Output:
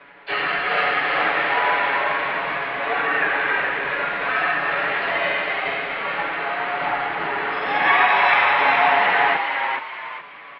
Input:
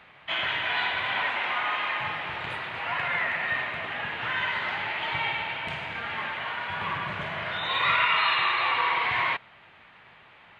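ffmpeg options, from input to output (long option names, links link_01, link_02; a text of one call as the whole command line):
ffmpeg -i in.wav -filter_complex "[0:a]aecho=1:1:7.3:0.93,aresample=16000,acrusher=bits=5:mode=log:mix=0:aa=0.000001,aresample=44100,highpass=frequency=390:width_type=q:width=0.5412,highpass=frequency=390:width_type=q:width=1.307,lowpass=frequency=2800:width_type=q:width=0.5176,lowpass=frequency=2800:width_type=q:width=0.7071,lowpass=frequency=2800:width_type=q:width=1.932,afreqshift=-250,asplit=2[link_01][link_02];[link_02]asetrate=66075,aresample=44100,atempo=0.66742,volume=-12dB[link_03];[link_01][link_03]amix=inputs=2:normalize=0,asplit=5[link_04][link_05][link_06][link_07][link_08];[link_05]adelay=420,afreqshift=100,volume=-5dB[link_09];[link_06]adelay=840,afreqshift=200,volume=-14.4dB[link_10];[link_07]adelay=1260,afreqshift=300,volume=-23.7dB[link_11];[link_08]adelay=1680,afreqshift=400,volume=-33.1dB[link_12];[link_04][link_09][link_10][link_11][link_12]amix=inputs=5:normalize=0,volume=4dB" out.wav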